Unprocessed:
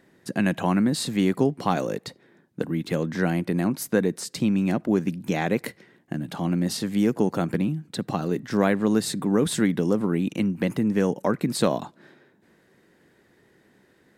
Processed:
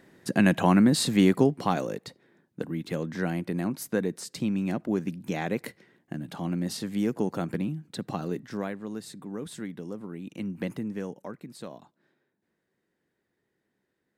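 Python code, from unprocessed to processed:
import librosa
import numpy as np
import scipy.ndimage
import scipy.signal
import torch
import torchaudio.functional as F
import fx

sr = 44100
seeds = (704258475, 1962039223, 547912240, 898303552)

y = fx.gain(x, sr, db=fx.line((1.24, 2.0), (2.0, -5.5), (8.31, -5.5), (8.8, -15.0), (10.21, -15.0), (10.58, -6.5), (11.52, -19.0)))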